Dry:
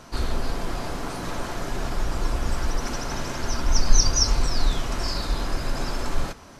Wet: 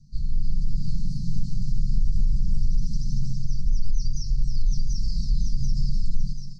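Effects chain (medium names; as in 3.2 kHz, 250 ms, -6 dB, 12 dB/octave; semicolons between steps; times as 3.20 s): Chebyshev band-stop 210–4500 Hz, order 5; comb 6.8 ms, depth 45%; thinning echo 737 ms, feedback 50%, level -6.5 dB; on a send at -16.5 dB: reverberation RT60 2.1 s, pre-delay 161 ms; on the sum: level rider gain up to 9.5 dB; peak limiter -12 dBFS, peak gain reduction 11 dB; tape spacing loss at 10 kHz 31 dB; hum notches 60/120/180/240 Hz; feedback comb 870 Hz, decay 0.29 s, mix 60%; trim +7 dB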